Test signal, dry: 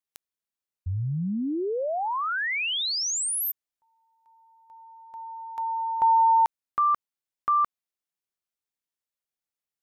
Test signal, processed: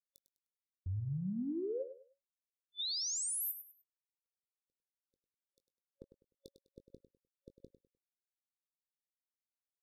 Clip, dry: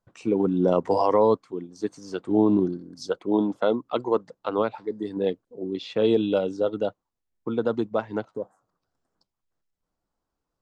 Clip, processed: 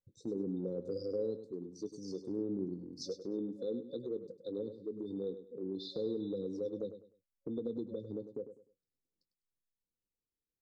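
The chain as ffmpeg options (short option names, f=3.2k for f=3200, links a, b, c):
-filter_complex "[0:a]afftfilt=real='re*(1-between(b*sr/4096,550,3500))':imag='im*(1-between(b*sr/4096,550,3500))':win_size=4096:overlap=0.75,afftdn=nr=13:nf=-46,acompressor=threshold=-38dB:ratio=2.5:attack=3.2:release=97:knee=1:detection=peak,asplit=2[a][b];[b]adelay=21,volume=-13.5dB[c];[a][c]amix=inputs=2:normalize=0,asplit=2[d][e];[e]aecho=0:1:101|202|303:0.282|0.0789|0.0221[f];[d][f]amix=inputs=2:normalize=0,volume=-2.5dB"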